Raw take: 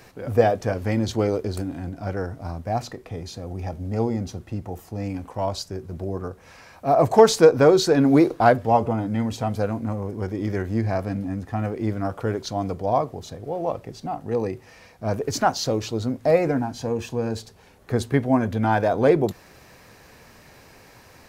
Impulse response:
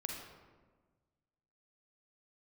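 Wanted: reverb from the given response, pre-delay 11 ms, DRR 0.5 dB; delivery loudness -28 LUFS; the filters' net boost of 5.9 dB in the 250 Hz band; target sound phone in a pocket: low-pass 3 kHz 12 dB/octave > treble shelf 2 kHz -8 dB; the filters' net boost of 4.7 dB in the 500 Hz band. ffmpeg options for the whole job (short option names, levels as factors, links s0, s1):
-filter_complex "[0:a]equalizer=f=250:t=o:g=6,equalizer=f=500:t=o:g=4.5,asplit=2[s0][s1];[1:a]atrim=start_sample=2205,adelay=11[s2];[s1][s2]afir=irnorm=-1:irlink=0,volume=0.944[s3];[s0][s3]amix=inputs=2:normalize=0,lowpass=3000,highshelf=f=2000:g=-8,volume=0.224"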